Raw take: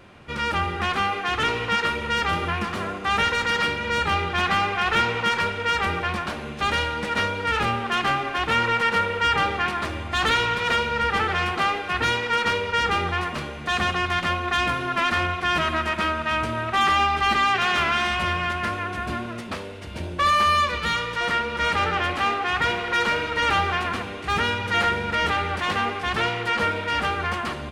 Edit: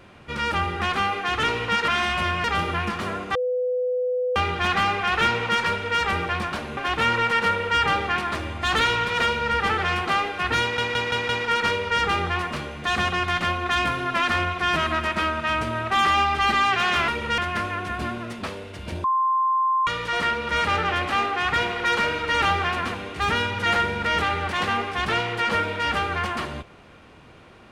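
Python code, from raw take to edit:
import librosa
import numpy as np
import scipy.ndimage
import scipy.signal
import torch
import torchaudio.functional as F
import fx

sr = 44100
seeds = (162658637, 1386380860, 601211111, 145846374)

y = fx.edit(x, sr, fx.swap(start_s=1.88, length_s=0.3, other_s=17.9, other_length_s=0.56),
    fx.bleep(start_s=3.09, length_s=1.01, hz=500.0, db=-21.0),
    fx.cut(start_s=6.51, length_s=1.76),
    fx.stutter(start_s=12.11, slice_s=0.17, count=5),
    fx.bleep(start_s=20.12, length_s=0.83, hz=1050.0, db=-18.0), tone=tone)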